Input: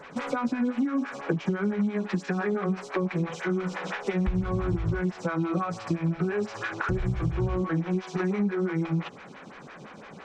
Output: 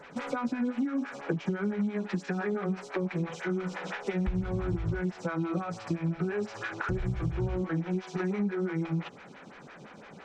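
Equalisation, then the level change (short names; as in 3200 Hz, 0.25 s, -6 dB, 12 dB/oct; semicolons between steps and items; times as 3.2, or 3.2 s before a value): notch 1100 Hz, Q 16; -3.5 dB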